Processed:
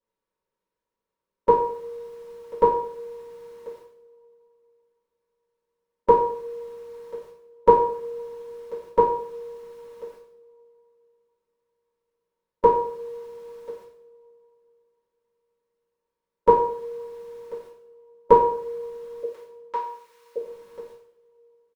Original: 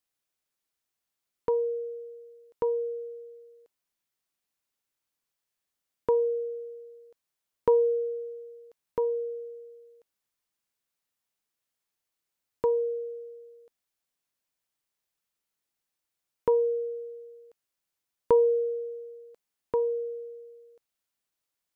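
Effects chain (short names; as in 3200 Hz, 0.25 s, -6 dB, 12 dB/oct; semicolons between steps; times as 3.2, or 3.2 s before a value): per-bin compression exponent 0.6; 19.23–20.36 HPF 1400 Hz 12 dB/oct; gate -59 dBFS, range -31 dB; comb 5.3 ms, depth 33%; two-slope reverb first 0.58 s, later 3.5 s, from -28 dB, DRR -9.5 dB; gain +1 dB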